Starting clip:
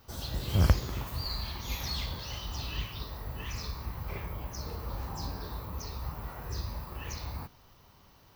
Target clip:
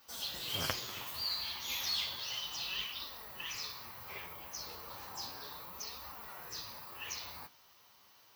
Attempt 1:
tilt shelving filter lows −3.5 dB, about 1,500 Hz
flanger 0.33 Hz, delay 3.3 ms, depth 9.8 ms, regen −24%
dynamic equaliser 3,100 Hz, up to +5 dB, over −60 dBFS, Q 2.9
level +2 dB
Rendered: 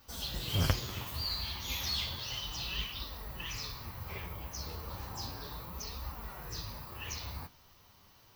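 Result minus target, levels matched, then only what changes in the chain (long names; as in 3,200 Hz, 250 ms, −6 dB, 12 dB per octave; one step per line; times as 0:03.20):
500 Hz band +2.5 dB
add first: high-pass filter 640 Hz 6 dB per octave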